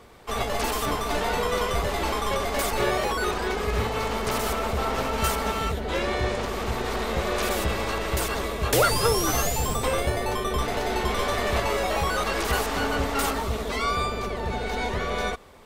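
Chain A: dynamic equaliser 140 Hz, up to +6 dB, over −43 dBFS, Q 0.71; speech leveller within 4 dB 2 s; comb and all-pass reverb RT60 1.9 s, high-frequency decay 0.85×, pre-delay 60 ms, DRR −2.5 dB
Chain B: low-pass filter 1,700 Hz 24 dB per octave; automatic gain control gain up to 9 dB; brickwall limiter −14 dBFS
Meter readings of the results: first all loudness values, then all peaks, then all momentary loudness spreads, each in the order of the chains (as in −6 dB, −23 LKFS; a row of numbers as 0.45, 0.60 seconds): −20.5, −23.0 LKFS; −4.0, −14.0 dBFS; 2, 1 LU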